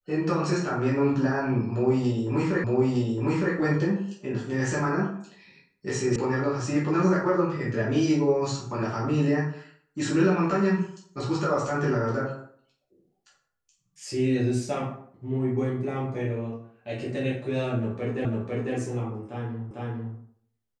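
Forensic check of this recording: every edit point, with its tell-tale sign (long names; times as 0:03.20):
0:02.64: the same again, the last 0.91 s
0:06.16: cut off before it has died away
0:18.25: the same again, the last 0.5 s
0:19.71: the same again, the last 0.45 s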